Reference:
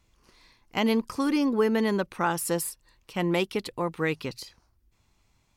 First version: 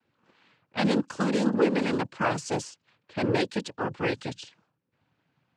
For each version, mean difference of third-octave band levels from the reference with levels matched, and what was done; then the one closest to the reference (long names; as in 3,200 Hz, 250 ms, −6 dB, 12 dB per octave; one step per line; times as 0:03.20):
7.5 dB: cochlear-implant simulation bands 8
low-pass that shuts in the quiet parts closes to 2,400 Hz, open at −25.5 dBFS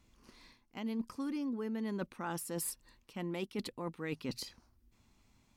4.5 dB: parametric band 240 Hz +9 dB 0.61 octaves
reversed playback
downward compressor 12 to 1, threshold −33 dBFS, peak gain reduction 19.5 dB
reversed playback
level −2 dB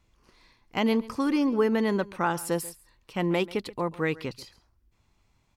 2.5 dB: high-shelf EQ 4,200 Hz −6 dB
single-tap delay 137 ms −20 dB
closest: third